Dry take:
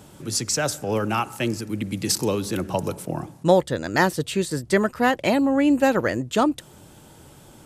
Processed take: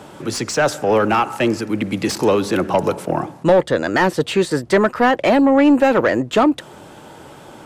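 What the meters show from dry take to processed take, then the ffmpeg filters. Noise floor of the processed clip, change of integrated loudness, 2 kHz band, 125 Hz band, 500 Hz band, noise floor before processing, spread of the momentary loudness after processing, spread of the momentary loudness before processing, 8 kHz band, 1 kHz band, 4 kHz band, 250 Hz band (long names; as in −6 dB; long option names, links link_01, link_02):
−41 dBFS, +6.0 dB, +5.5 dB, +2.0 dB, +7.0 dB, −49 dBFS, 9 LU, 8 LU, −2.5 dB, +6.5 dB, +2.5 dB, +5.5 dB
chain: -filter_complex "[0:a]acrossover=split=420[link_01][link_02];[link_02]acompressor=threshold=-22dB:ratio=2[link_03];[link_01][link_03]amix=inputs=2:normalize=0,asplit=2[link_04][link_05];[link_05]highpass=frequency=720:poles=1,volume=21dB,asoftclip=type=tanh:threshold=-3.5dB[link_06];[link_04][link_06]amix=inputs=2:normalize=0,lowpass=frequency=1200:poles=1,volume=-6dB,volume=1.5dB"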